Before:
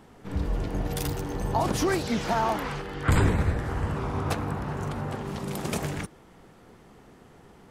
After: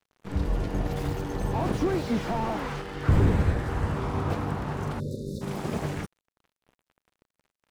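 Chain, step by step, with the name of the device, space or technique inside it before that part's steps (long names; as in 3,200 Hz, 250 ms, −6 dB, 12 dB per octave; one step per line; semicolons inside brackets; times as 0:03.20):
early transistor amplifier (dead-zone distortion −45 dBFS; slew-rate limiting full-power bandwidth 26 Hz)
time-frequency box erased 0:05.00–0:05.42, 600–3,500 Hz
level +2 dB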